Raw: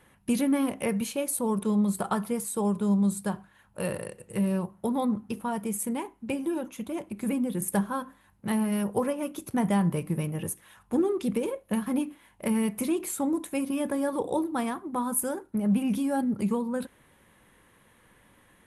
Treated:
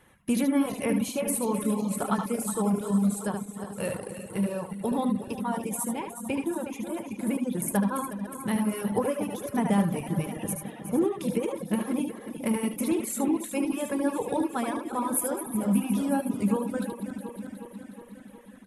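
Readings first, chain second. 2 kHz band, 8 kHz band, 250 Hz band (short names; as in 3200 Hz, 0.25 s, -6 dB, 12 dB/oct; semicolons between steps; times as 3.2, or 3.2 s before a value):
+1.0 dB, +1.0 dB, +0.5 dB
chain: regenerating reverse delay 0.182 s, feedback 80%, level -9 dB; notch 4600 Hz, Q 25; on a send: echo 75 ms -4 dB; on the sum: reverb removal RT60 0.94 s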